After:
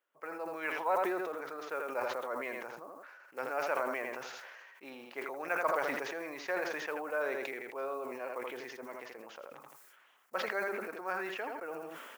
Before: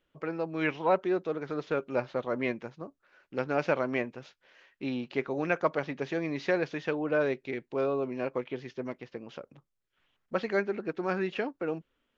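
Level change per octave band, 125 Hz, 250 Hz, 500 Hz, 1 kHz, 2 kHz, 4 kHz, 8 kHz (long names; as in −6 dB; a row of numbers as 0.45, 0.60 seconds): −21.5 dB, −12.0 dB, −6.5 dB, −0.5 dB, −1.5 dB, −2.0 dB, can't be measured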